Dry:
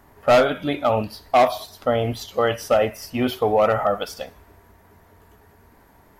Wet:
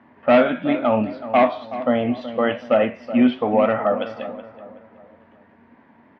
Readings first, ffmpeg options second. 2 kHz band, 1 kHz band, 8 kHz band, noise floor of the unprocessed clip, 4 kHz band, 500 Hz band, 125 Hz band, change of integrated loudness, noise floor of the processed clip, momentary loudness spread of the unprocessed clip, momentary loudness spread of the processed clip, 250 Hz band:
+1.0 dB, -1.0 dB, under -25 dB, -54 dBFS, -4.5 dB, +0.5 dB, -4.5 dB, +1.0 dB, -53 dBFS, 10 LU, 9 LU, +7.5 dB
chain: -filter_complex "[0:a]flanger=delay=9:depth=3.9:regen=82:speed=1.1:shape=sinusoidal,highpass=190,equalizer=f=240:t=q:w=4:g=9,equalizer=f=420:t=q:w=4:g=-8,equalizer=f=770:t=q:w=4:g=-4,equalizer=f=1.3k:t=q:w=4:g=-5,lowpass=f=2.8k:w=0.5412,lowpass=f=2.8k:w=1.3066,asplit=2[a][b];[b]adelay=375,lowpass=f=1.5k:p=1,volume=-12.5dB,asplit=2[c][d];[d]adelay=375,lowpass=f=1.5k:p=1,volume=0.43,asplit=2[e][f];[f]adelay=375,lowpass=f=1.5k:p=1,volume=0.43,asplit=2[g][h];[h]adelay=375,lowpass=f=1.5k:p=1,volume=0.43[i];[c][e][g][i]amix=inputs=4:normalize=0[j];[a][j]amix=inputs=2:normalize=0,volume=7dB"

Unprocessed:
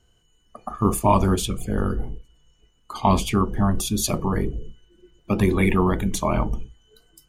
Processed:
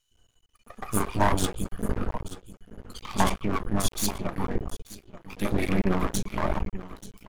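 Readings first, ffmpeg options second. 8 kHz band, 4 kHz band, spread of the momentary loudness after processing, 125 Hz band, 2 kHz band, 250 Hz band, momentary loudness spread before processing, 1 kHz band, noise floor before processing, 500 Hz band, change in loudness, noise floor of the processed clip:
-3.5 dB, -3.5 dB, 19 LU, -7.5 dB, -2.0 dB, -6.5 dB, 15 LU, -5.5 dB, -63 dBFS, -6.5 dB, -6.5 dB, -68 dBFS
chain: -filter_complex "[0:a]equalizer=f=150:t=o:w=0.31:g=-9,acrossover=split=370|2000[a][b][c];[a]adelay=110[d];[b]adelay=150[e];[d][e][c]amix=inputs=3:normalize=0,flanger=delay=5.1:depth=3.4:regen=74:speed=1.2:shape=sinusoidal,asplit=2[f][g];[g]aecho=0:1:884:0.168[h];[f][h]amix=inputs=2:normalize=0,aeval=exprs='max(val(0),0)':c=same,volume=4.5dB"

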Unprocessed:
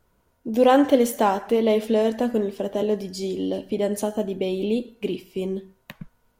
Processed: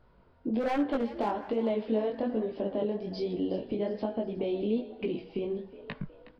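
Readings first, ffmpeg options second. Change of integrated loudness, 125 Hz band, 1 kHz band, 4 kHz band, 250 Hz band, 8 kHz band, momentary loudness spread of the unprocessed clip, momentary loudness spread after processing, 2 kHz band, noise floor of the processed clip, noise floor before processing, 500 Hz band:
-9.0 dB, -6.0 dB, -11.0 dB, -11.5 dB, -7.5 dB, under -25 dB, 12 LU, 7 LU, -9.5 dB, -61 dBFS, -67 dBFS, -9.0 dB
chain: -filter_complex "[0:a]aresample=11025,aresample=44100,aeval=exprs='0.282*(abs(mod(val(0)/0.282+3,4)-2)-1)':c=same,acompressor=threshold=-36dB:ratio=3,highshelf=f=2.7k:g=-8.5,flanger=delay=17:depth=7.7:speed=1.2,asplit=2[a][b];[b]asplit=4[c][d][e][f];[c]adelay=366,afreqshift=54,volume=-17dB[g];[d]adelay=732,afreqshift=108,volume=-23.6dB[h];[e]adelay=1098,afreqshift=162,volume=-30.1dB[i];[f]adelay=1464,afreqshift=216,volume=-36.7dB[j];[g][h][i][j]amix=inputs=4:normalize=0[k];[a][k]amix=inputs=2:normalize=0,volume=7.5dB"

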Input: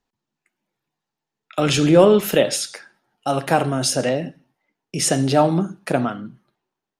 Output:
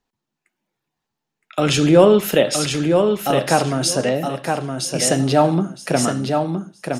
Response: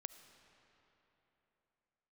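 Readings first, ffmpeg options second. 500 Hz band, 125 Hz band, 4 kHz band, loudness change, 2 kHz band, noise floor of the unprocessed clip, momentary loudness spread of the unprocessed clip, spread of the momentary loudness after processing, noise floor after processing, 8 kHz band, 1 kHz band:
+2.0 dB, +2.0 dB, +2.5 dB, +1.0 dB, +2.0 dB, -85 dBFS, 17 LU, 11 LU, -81 dBFS, +2.0 dB, +2.0 dB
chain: -af "aecho=1:1:966|1932|2898:0.562|0.112|0.0225,volume=1dB"

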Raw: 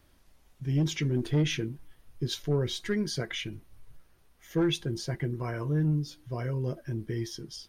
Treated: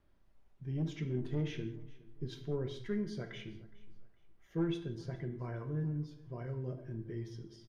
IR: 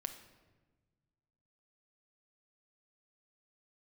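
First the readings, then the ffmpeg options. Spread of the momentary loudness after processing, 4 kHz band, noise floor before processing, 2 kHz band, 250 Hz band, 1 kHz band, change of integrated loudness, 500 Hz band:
11 LU, -16.5 dB, -62 dBFS, -12.5 dB, -8.0 dB, -9.5 dB, -8.5 dB, -7.5 dB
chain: -filter_complex "[0:a]lowpass=f=1.4k:p=1,aecho=1:1:415|830:0.0841|0.0261[a];[1:a]atrim=start_sample=2205,afade=t=out:st=0.3:d=0.01,atrim=end_sample=13671,asetrate=52920,aresample=44100[b];[a][b]afir=irnorm=-1:irlink=0,volume=-4.5dB"

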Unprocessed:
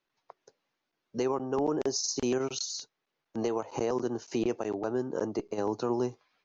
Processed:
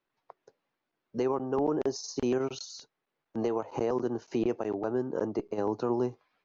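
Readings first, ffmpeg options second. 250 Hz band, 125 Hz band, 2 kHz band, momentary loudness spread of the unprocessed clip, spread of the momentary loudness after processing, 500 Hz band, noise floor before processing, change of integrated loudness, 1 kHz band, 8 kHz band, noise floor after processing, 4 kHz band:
+1.0 dB, +1.0 dB, -1.5 dB, 6 LU, 6 LU, +0.5 dB, -84 dBFS, +0.5 dB, 0.0 dB, n/a, -85 dBFS, -7.0 dB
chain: -af "aemphasis=mode=reproduction:type=75fm"

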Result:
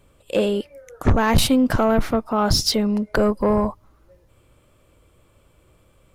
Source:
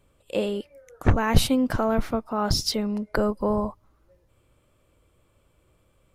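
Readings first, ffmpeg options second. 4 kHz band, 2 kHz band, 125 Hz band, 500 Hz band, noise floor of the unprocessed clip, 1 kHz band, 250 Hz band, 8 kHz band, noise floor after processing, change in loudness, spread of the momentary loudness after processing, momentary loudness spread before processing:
+5.5 dB, +5.0 dB, +3.0 dB, +5.5 dB, -65 dBFS, +5.0 dB, +5.5 dB, +5.5 dB, -58 dBFS, +5.0 dB, 8 LU, 8 LU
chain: -af "asoftclip=type=tanh:threshold=-16.5dB,volume=7dB"

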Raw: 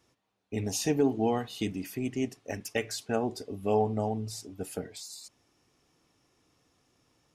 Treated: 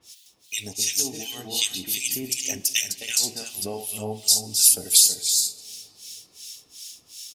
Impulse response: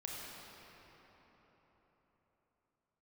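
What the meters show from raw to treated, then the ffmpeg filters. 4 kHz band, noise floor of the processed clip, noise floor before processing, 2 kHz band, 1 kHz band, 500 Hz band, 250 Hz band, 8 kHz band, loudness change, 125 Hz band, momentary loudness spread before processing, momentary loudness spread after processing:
+19.0 dB, -58 dBFS, -77 dBFS, +7.0 dB, -8.0 dB, -7.0 dB, -7.5 dB, +21.5 dB, +11.0 dB, -6.5 dB, 13 LU, 24 LU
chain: -filter_complex "[0:a]highshelf=f=2.4k:t=q:w=1.5:g=12.5,acompressor=threshold=-36dB:ratio=4,aecho=1:1:260|325:0.473|0.473,acrossover=split=1500[a][b];[a]aeval=exprs='val(0)*(1-1/2+1/2*cos(2*PI*2.7*n/s))':c=same[c];[b]aeval=exprs='val(0)*(1-1/2-1/2*cos(2*PI*2.7*n/s))':c=same[d];[c][d]amix=inputs=2:normalize=0,asplit=2[e][f];[1:a]atrim=start_sample=2205[g];[f][g]afir=irnorm=-1:irlink=0,volume=-15.5dB[h];[e][h]amix=inputs=2:normalize=0,crystalizer=i=8:c=0,volume=4dB"

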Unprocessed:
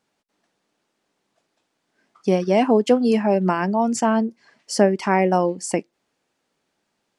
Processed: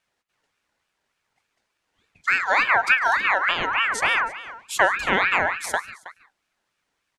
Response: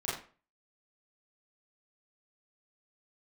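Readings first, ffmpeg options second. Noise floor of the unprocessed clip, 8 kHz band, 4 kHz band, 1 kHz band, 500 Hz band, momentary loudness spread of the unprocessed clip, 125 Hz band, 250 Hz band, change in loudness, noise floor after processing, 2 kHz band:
-75 dBFS, -3.0 dB, +6.0 dB, +0.5 dB, -11.0 dB, 10 LU, -16.5 dB, -19.5 dB, -0.5 dB, -78 dBFS, +13.0 dB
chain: -filter_complex "[0:a]asplit=2[a][b];[b]adelay=320.7,volume=-16dB,highshelf=f=4k:g=-7.22[c];[a][c]amix=inputs=2:normalize=0,asplit=2[d][e];[1:a]atrim=start_sample=2205,atrim=end_sample=3969,adelay=105[f];[e][f]afir=irnorm=-1:irlink=0,volume=-19.5dB[g];[d][g]amix=inputs=2:normalize=0,aeval=exprs='val(0)*sin(2*PI*1600*n/s+1600*0.3/3.4*sin(2*PI*3.4*n/s))':c=same"

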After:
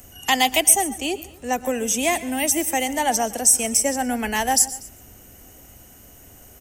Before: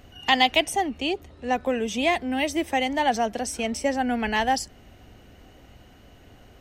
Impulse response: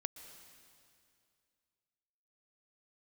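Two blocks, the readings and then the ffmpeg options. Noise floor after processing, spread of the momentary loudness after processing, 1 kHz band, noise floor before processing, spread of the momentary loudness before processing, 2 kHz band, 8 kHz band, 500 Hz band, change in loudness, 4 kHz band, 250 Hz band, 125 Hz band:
-47 dBFS, 11 LU, +0.5 dB, -52 dBFS, 8 LU, +0.5 dB, +18.0 dB, +0.5 dB, +5.0 dB, +1.0 dB, +0.5 dB, n/a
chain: -filter_complex "[0:a]acrossover=split=290|530|1700[a][b][c][d];[d]aexciter=amount=7.4:drive=7.8:freq=6.1k[e];[a][b][c][e]amix=inputs=4:normalize=0,aecho=1:1:241:0.0631[f];[1:a]atrim=start_sample=2205,atrim=end_sample=6615[g];[f][g]afir=irnorm=-1:irlink=0,volume=3dB"

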